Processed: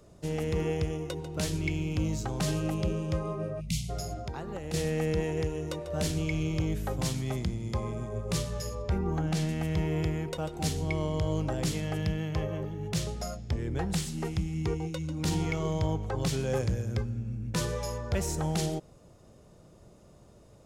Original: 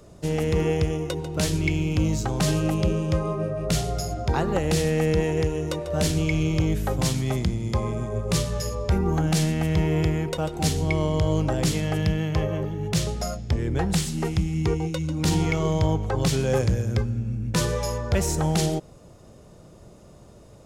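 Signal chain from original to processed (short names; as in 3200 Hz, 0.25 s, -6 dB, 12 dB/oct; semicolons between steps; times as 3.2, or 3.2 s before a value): 3.61–3.9 spectral gain 250–2000 Hz -30 dB; 4.17–4.74 compressor 4:1, threshold -28 dBFS, peak gain reduction 8.5 dB; 8.82–9.49 high shelf 6400 Hz -9 dB; gain -7 dB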